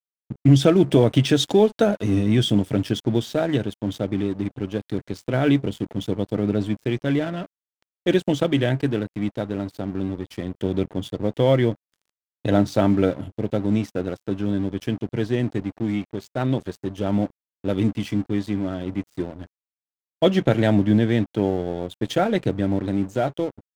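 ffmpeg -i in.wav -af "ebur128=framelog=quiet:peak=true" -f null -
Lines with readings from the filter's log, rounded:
Integrated loudness:
  I:         -22.9 LUFS
  Threshold: -33.0 LUFS
Loudness range:
  LRA:         5.3 LU
  Threshold: -43.7 LUFS
  LRA low:   -26.1 LUFS
  LRA high:  -20.8 LUFS
True peak:
  Peak:       -3.0 dBFS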